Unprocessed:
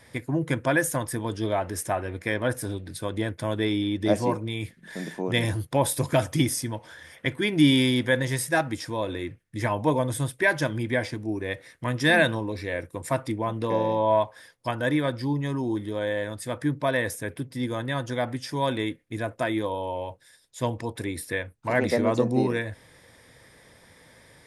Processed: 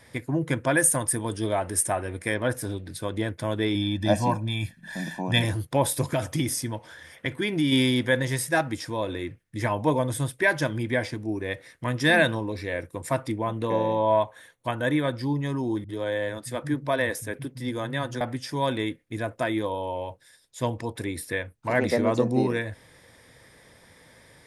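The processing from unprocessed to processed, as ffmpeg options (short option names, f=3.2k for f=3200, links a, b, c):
-filter_complex "[0:a]asettb=1/sr,asplit=3[a][b][c];[a]atrim=end=0.754[d];[b]atrim=start=0.75:end=2.35,asetpts=PTS-STARTPTS,afade=t=in:d=0.004:c=qsin,afade=t=out:st=1.596:d=0.004:c=qsin,equalizer=f=9.2k:t=o:w=0.33:g=15[e];[c]atrim=start=2.346[f];[d][e]acrossfade=d=0.004:c1=hsin:c2=qsin[g];[g][f]acrossfade=d=0.004:c1=qsin:c2=hsin,asettb=1/sr,asplit=3[h][i][j];[h]atrim=end=3.754[k];[i]atrim=start=3.75:end=5.42,asetpts=PTS-STARTPTS,afade=t=in:d=0.004:c=qsin,afade=t=out:st=1.666:d=0.004:c=qsin,aecho=1:1:1.2:0.8,atrim=end_sample=73647[l];[j]atrim=start=5.416[m];[k][l]acrossfade=d=0.004:c1=hsin:c2=qsin[n];[n][m]acrossfade=d=0.004:c1=qsin:c2=hsin,asplit=3[o][p][q];[o]afade=t=out:st=6.07:d=0.02[r];[p]acompressor=threshold=-22dB:ratio=2.5:attack=3.2:release=140:knee=1:detection=peak,afade=t=in:st=6.07:d=0.02,afade=t=out:st=7.71:d=0.02[s];[q]afade=t=in:st=7.71:d=0.02[t];[r][s][t]amix=inputs=3:normalize=0,asettb=1/sr,asplit=3[u][v][w];[u]atrim=end=13.434[x];[v]atrim=start=13.43:end=15.14,asetpts=PTS-STARTPTS,afade=t=in:d=0.004:c=qsin,afade=t=out:st=1.706:d=0.004:c=qsin,asuperstop=centerf=5000:order=4:qfactor=4.2[y];[w]atrim=start=15.136[z];[x][y]acrossfade=d=0.004:c1=hsin:c2=qsin[aa];[aa][z]acrossfade=d=0.004:c1=qsin:c2=hsin,asettb=1/sr,asplit=3[ab][ac][ad];[ab]atrim=end=15.844[ae];[ac]atrim=start=15.84:end=18.21,asetpts=PTS-STARTPTS,afade=t=in:d=0.004:c=qsin,afade=t=out:st=2.366:d=0.004:c=qsin,acrossover=split=160[af][ag];[ag]adelay=50[ah];[af][ah]amix=inputs=2:normalize=0,atrim=end_sample=104517[ai];[ad]atrim=start=18.206[aj];[ae][ai]acrossfade=d=0.004:c1=hsin:c2=qsin[ak];[ak][aj]acrossfade=d=0.004:c1=qsin:c2=hsin"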